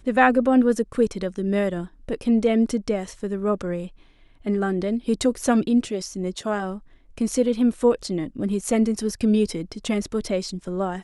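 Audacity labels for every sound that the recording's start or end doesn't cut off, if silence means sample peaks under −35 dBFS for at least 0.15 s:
2.090000	3.880000	sound
4.460000	6.780000	sound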